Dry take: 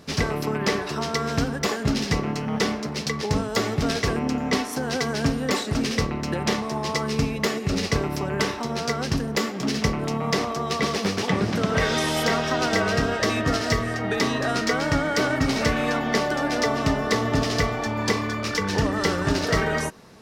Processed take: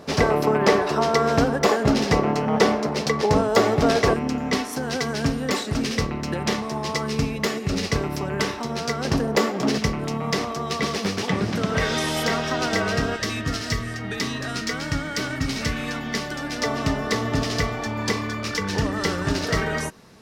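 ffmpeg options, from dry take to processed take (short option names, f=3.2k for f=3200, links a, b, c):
-af "asetnsamples=n=441:p=0,asendcmd='4.14 equalizer g -0.5;9.05 equalizer g 8;9.78 equalizer g -1.5;13.16 equalizer g -10;16.62 equalizer g -2.5',equalizer=f=640:t=o:w=2.2:g=10"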